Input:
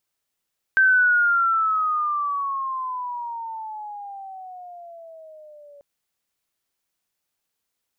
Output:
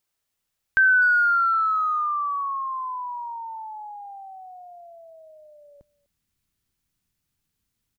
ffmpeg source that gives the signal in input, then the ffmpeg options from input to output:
-f lavfi -i "aevalsrc='pow(10,(-12.5-31*t/5.04)/20)*sin(2*PI*1560*5.04/(-17.5*log(2)/12)*(exp(-17.5*log(2)/12*t/5.04)-1))':duration=5.04:sample_rate=44100"
-filter_complex "[0:a]asubboost=boost=10:cutoff=180,asplit=2[link_01][link_02];[link_02]adelay=250,highpass=300,lowpass=3400,asoftclip=type=hard:threshold=-20.5dB,volume=-21dB[link_03];[link_01][link_03]amix=inputs=2:normalize=0"

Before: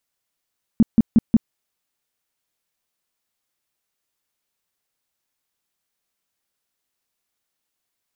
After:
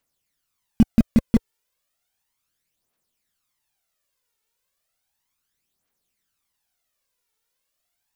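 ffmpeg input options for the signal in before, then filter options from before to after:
-f lavfi -i "aevalsrc='0.398*sin(2*PI*226*mod(t,0.18))*lt(mod(t,0.18),6/226)':duration=0.72:sample_rate=44100"
-filter_complex "[0:a]aphaser=in_gain=1:out_gain=1:delay=2.3:decay=0.59:speed=0.34:type=triangular,asplit=2[link_01][link_02];[link_02]acrusher=bits=3:mix=0:aa=0.000001,volume=-10dB[link_03];[link_01][link_03]amix=inputs=2:normalize=0"

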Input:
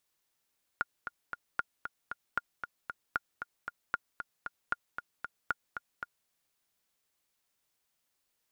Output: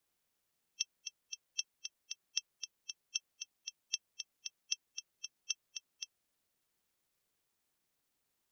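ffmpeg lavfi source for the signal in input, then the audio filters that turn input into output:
-f lavfi -i "aevalsrc='pow(10,(-16-8*gte(mod(t,3*60/230),60/230))/20)*sin(2*PI*1420*mod(t,60/230))*exp(-6.91*mod(t,60/230)/0.03)':duration=5.47:sample_rate=44100"
-af "afftfilt=real='real(if(lt(b,272),68*(eq(floor(b/68),0)*3+eq(floor(b/68),1)*2+eq(floor(b/68),2)*1+eq(floor(b/68),3)*0)+mod(b,68),b),0)':imag='imag(if(lt(b,272),68*(eq(floor(b/68),0)*3+eq(floor(b/68),1)*2+eq(floor(b/68),2)*1+eq(floor(b/68),3)*0)+mod(b,68),b),0)':win_size=2048:overlap=0.75,lowshelf=frequency=360:gain=5.5,aeval=exprs='val(0)*sin(2*PI*270*n/s)':channel_layout=same"

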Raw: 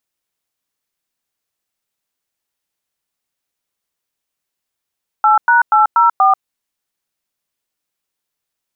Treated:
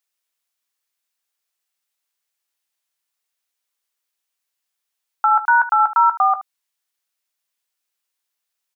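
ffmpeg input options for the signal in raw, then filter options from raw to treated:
-f lavfi -i "aevalsrc='0.316*clip(min(mod(t,0.24),0.138-mod(t,0.24))/0.002,0,1)*(eq(floor(t/0.24),0)*(sin(2*PI*852*mod(t,0.24))+sin(2*PI*1336*mod(t,0.24)))+eq(floor(t/0.24),1)*(sin(2*PI*941*mod(t,0.24))+sin(2*PI*1477*mod(t,0.24)))+eq(floor(t/0.24),2)*(sin(2*PI*852*mod(t,0.24))+sin(2*PI*1336*mod(t,0.24)))+eq(floor(t/0.24),3)*(sin(2*PI*941*mod(t,0.24))+sin(2*PI*1336*mod(t,0.24)))+eq(floor(t/0.24),4)*(sin(2*PI*770*mod(t,0.24))+sin(2*PI*1209*mod(t,0.24))))':duration=1.2:sample_rate=44100"
-filter_complex "[0:a]highpass=frequency=1100:poles=1,asplit=2[link_01][link_02];[link_02]aecho=0:1:16|75:0.282|0.178[link_03];[link_01][link_03]amix=inputs=2:normalize=0"

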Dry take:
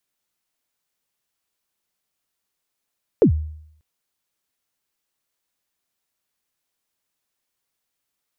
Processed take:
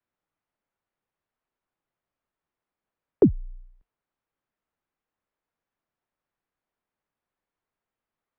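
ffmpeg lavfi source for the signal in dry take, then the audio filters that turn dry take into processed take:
-f lavfi -i "aevalsrc='0.422*pow(10,-3*t/0.7)*sin(2*PI*(520*0.095/log(77/520)*(exp(log(77/520)*min(t,0.095)/0.095)-1)+77*max(t-0.095,0)))':duration=0.59:sample_rate=44100"
-filter_complex "[0:a]lowpass=1600,acrossover=split=220|950[link_01][link_02][link_03];[link_01]acompressor=threshold=-29dB:ratio=6[link_04];[link_04][link_02][link_03]amix=inputs=3:normalize=0,afreqshift=-47"

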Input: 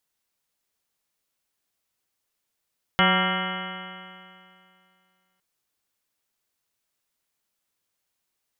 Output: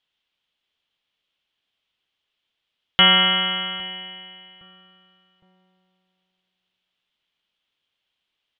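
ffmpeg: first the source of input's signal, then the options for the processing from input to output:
-f lavfi -i "aevalsrc='0.0794*pow(10,-3*t/2.44)*sin(2*PI*183.29*t)+0.0299*pow(10,-3*t/2.44)*sin(2*PI*368.33*t)+0.0398*pow(10,-3*t/2.44)*sin(2*PI*556.85*t)+0.0531*pow(10,-3*t/2.44)*sin(2*PI*750.51*t)+0.0473*pow(10,-3*t/2.44)*sin(2*PI*950.9*t)+0.0473*pow(10,-3*t/2.44)*sin(2*PI*1159.52*t)+0.0841*pow(10,-3*t/2.44)*sin(2*PI*1377.77*t)+0.0422*pow(10,-3*t/2.44)*sin(2*PI*1606.94*t)+0.0447*pow(10,-3*t/2.44)*sin(2*PI*1848.17*t)+0.0668*pow(10,-3*t/2.44)*sin(2*PI*2102.51*t)+0.0158*pow(10,-3*t/2.44)*sin(2*PI*2370.9*t)+0.015*pow(10,-3*t/2.44)*sin(2*PI*2654.16*t)+0.0668*pow(10,-3*t/2.44)*sin(2*PI*2953.03*t)+0.0299*pow(10,-3*t/2.44)*sin(2*PI*3268.13*t)':duration=2.41:sample_rate=44100"
-filter_complex "[0:a]lowpass=frequency=3200:width_type=q:width=4.9,asplit=2[link_01][link_02];[link_02]adelay=811,lowpass=frequency=910:poles=1,volume=-20dB,asplit=2[link_03][link_04];[link_04]adelay=811,lowpass=frequency=910:poles=1,volume=0.44,asplit=2[link_05][link_06];[link_06]adelay=811,lowpass=frequency=910:poles=1,volume=0.44[link_07];[link_01][link_03][link_05][link_07]amix=inputs=4:normalize=0"

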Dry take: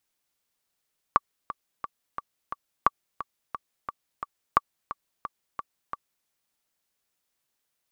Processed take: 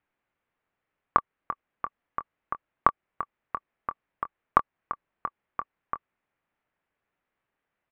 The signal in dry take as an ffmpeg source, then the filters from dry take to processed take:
-f lavfi -i "aevalsrc='pow(10,(-4.5-14.5*gte(mod(t,5*60/176),60/176))/20)*sin(2*PI*1150*mod(t,60/176))*exp(-6.91*mod(t,60/176)/0.03)':duration=5.11:sample_rate=44100"
-filter_complex "[0:a]lowpass=frequency=2300:width=0.5412,lowpass=frequency=2300:width=1.3066,asplit=2[link_01][link_02];[link_02]acompressor=threshold=-27dB:ratio=6,volume=-3dB[link_03];[link_01][link_03]amix=inputs=2:normalize=0,asplit=2[link_04][link_05];[link_05]adelay=24,volume=-12.5dB[link_06];[link_04][link_06]amix=inputs=2:normalize=0"

